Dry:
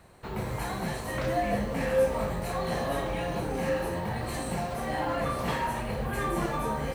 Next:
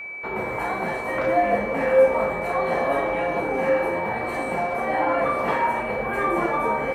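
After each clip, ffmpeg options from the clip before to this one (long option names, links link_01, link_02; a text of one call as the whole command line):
ffmpeg -i in.wav -filter_complex "[0:a]acontrast=29,acrossover=split=270 2000:gain=0.141 1 0.158[link_01][link_02][link_03];[link_01][link_02][link_03]amix=inputs=3:normalize=0,aeval=exprs='val(0)+0.0158*sin(2*PI*2300*n/s)':channel_layout=same,volume=4dB" out.wav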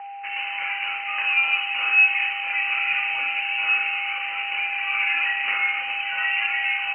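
ffmpeg -i in.wav -af "lowpass=frequency=2600:width_type=q:width=0.5098,lowpass=frequency=2600:width_type=q:width=0.6013,lowpass=frequency=2600:width_type=q:width=0.9,lowpass=frequency=2600:width_type=q:width=2.563,afreqshift=-3100,volume=-1dB" out.wav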